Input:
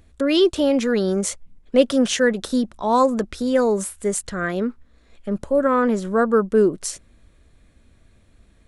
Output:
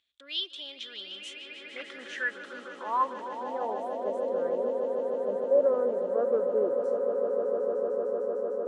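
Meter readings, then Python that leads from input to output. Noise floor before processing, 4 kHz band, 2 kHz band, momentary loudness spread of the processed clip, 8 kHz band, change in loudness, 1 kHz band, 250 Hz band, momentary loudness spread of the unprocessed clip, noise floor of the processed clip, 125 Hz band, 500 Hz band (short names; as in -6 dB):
-55 dBFS, n/a, -8.5 dB, 14 LU, under -25 dB, -9.0 dB, -8.0 dB, -21.5 dB, 11 LU, -47 dBFS, under -20 dB, -6.5 dB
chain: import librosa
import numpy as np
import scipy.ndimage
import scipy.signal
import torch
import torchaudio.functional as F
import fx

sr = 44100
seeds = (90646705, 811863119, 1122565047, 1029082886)

y = fx.echo_swell(x, sr, ms=151, loudest=8, wet_db=-10.5)
y = np.clip(y, -10.0 ** (-8.0 / 20.0), 10.0 ** (-8.0 / 20.0))
y = fx.filter_sweep_bandpass(y, sr, from_hz=3400.0, to_hz=550.0, start_s=0.89, end_s=4.32, q=5.0)
y = y * 10.0 ** (-3.0 / 20.0)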